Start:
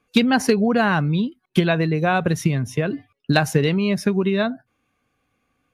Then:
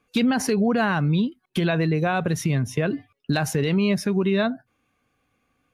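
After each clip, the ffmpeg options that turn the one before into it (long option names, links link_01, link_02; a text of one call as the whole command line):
ffmpeg -i in.wav -af "alimiter=limit=-13dB:level=0:latency=1:release=47" out.wav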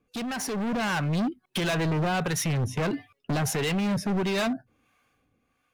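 ffmpeg -i in.wav -filter_complex "[0:a]acrossover=split=600[link_01][link_02];[link_01]aeval=exprs='val(0)*(1-0.7/2+0.7/2*cos(2*PI*1.5*n/s))':channel_layout=same[link_03];[link_02]aeval=exprs='val(0)*(1-0.7/2-0.7/2*cos(2*PI*1.5*n/s))':channel_layout=same[link_04];[link_03][link_04]amix=inputs=2:normalize=0,asoftclip=type=hard:threshold=-30dB,dynaudnorm=framelen=110:gausssize=13:maxgain=6dB" out.wav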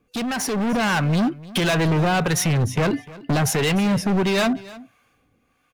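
ffmpeg -i in.wav -af "aecho=1:1:299:0.106,volume=6.5dB" out.wav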